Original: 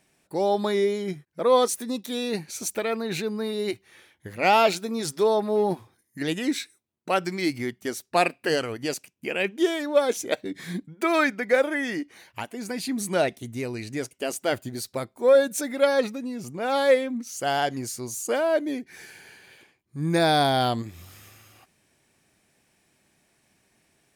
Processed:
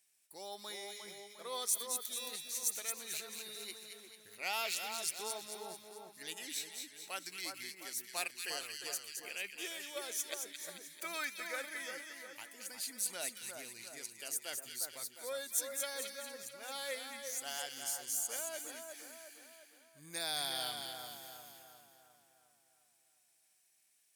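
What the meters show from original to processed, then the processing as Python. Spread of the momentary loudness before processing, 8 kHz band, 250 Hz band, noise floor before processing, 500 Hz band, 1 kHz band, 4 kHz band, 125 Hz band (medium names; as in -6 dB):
13 LU, -2.0 dB, -28.5 dB, -68 dBFS, -24.5 dB, -20.0 dB, -8.0 dB, -31.0 dB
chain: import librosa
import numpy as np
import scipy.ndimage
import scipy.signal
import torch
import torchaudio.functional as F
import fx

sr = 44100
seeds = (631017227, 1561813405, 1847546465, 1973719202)

y = scipy.signal.lfilter([1.0, -0.97], [1.0], x)
y = fx.echo_split(y, sr, split_hz=1700.0, low_ms=355, high_ms=220, feedback_pct=52, wet_db=-5)
y = F.gain(torch.from_numpy(y), -4.0).numpy()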